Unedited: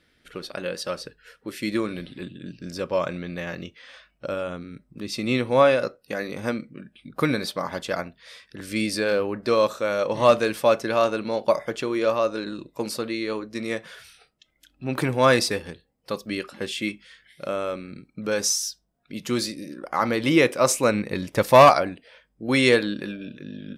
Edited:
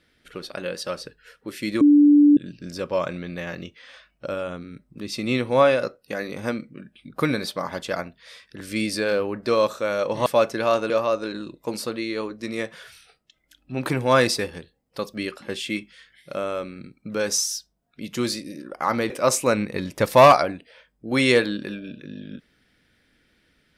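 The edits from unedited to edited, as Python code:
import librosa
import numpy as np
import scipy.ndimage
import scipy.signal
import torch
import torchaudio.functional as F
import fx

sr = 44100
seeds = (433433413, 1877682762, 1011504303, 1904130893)

y = fx.edit(x, sr, fx.bleep(start_s=1.81, length_s=0.56, hz=292.0, db=-10.0),
    fx.cut(start_s=10.26, length_s=0.3),
    fx.cut(start_s=11.2, length_s=0.82),
    fx.cut(start_s=20.22, length_s=0.25), tone=tone)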